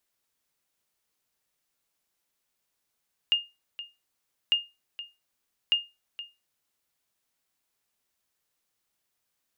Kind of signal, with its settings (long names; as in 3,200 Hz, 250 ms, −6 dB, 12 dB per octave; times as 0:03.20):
ping with an echo 2,830 Hz, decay 0.24 s, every 1.20 s, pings 3, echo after 0.47 s, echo −15.5 dB −15 dBFS